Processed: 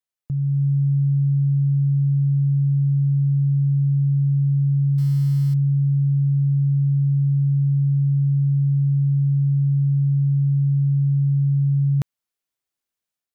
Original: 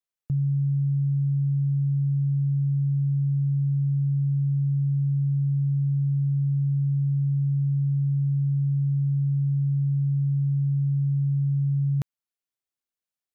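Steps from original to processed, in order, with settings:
automatic gain control gain up to 5 dB
0:04.98–0:05.54: floating-point word with a short mantissa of 4 bits

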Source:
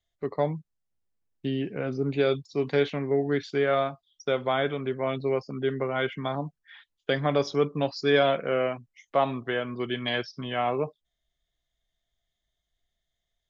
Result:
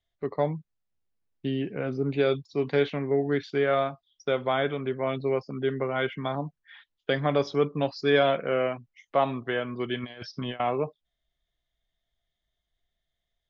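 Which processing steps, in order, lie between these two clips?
0:10.03–0:10.60: compressor whose output falls as the input rises −35 dBFS, ratio −0.5
low-pass filter 4,700 Hz 12 dB per octave

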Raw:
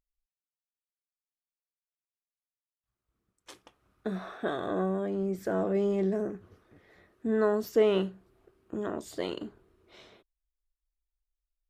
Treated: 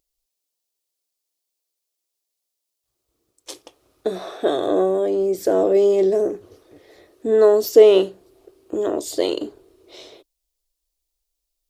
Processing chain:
drawn EQ curve 140 Hz 0 dB, 200 Hz −6 dB, 300 Hz +10 dB, 530 Hz +12 dB, 1,500 Hz −1 dB, 4,500 Hz +14 dB
level +2.5 dB

